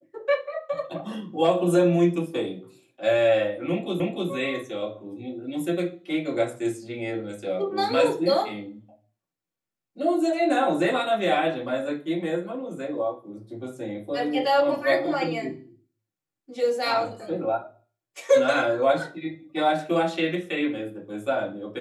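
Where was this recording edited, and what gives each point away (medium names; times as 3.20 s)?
4.00 s: repeat of the last 0.3 s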